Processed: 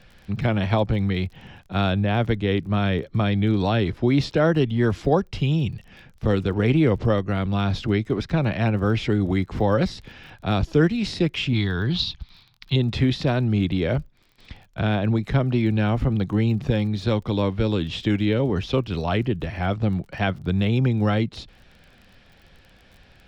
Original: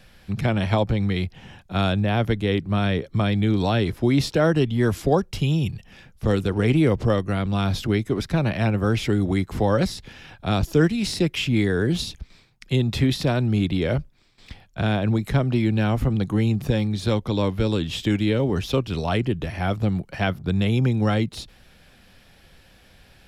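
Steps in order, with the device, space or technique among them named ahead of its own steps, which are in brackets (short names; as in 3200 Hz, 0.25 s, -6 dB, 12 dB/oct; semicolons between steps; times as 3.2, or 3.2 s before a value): lo-fi chain (LPF 4500 Hz 12 dB/oct; wow and flutter 25 cents; crackle 34/s -40 dBFS); 11.53–12.76 graphic EQ 125/250/500/1000/2000/4000/8000 Hz +3/-4/-11/+6/-5/+12/-11 dB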